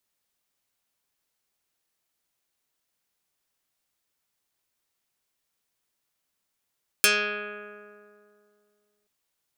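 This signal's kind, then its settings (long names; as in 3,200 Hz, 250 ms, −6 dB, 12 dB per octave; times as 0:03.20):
Karplus-Strong string G#3, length 2.03 s, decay 2.51 s, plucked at 0.21, dark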